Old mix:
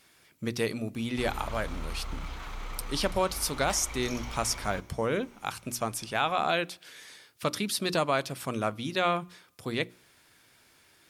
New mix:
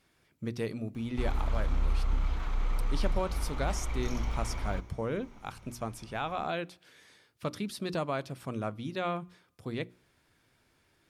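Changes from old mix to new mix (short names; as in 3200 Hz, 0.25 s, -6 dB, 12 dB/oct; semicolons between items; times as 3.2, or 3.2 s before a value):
speech -7.0 dB; master: add tilt -2 dB/oct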